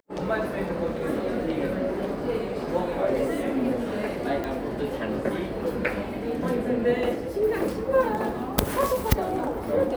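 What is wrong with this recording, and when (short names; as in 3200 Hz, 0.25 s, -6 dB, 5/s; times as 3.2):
4.44 pop -18 dBFS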